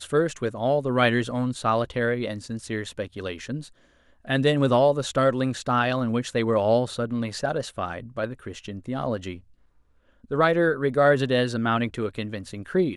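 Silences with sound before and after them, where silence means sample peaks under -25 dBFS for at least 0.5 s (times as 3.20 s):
3.56–4.30 s
9.32–10.32 s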